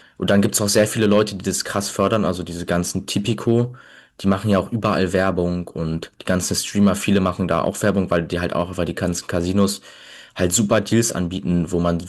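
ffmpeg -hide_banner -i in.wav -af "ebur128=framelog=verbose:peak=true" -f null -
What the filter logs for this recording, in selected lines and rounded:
Integrated loudness:
  I:         -20.1 LUFS
  Threshold: -30.3 LUFS
Loudness range:
  LRA:         1.8 LU
  Threshold: -40.7 LUFS
  LRA low:   -21.5 LUFS
  LRA high:  -19.7 LUFS
True peak:
  Peak:       -5.5 dBFS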